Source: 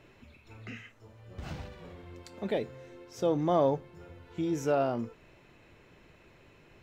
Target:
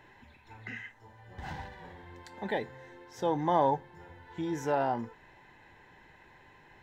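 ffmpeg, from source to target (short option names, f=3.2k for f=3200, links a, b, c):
-af "superequalizer=9b=3.98:11b=3.55:13b=1.41,volume=-3dB"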